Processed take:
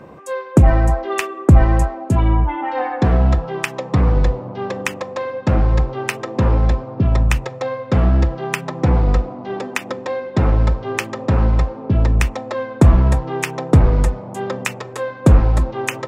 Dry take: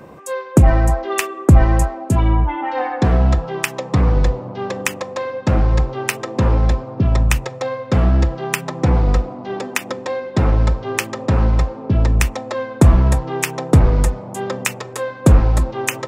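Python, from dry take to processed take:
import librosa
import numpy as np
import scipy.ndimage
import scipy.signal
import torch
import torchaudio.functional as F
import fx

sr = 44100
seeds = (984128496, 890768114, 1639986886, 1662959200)

y = fx.high_shelf(x, sr, hz=6100.0, db=-10.0)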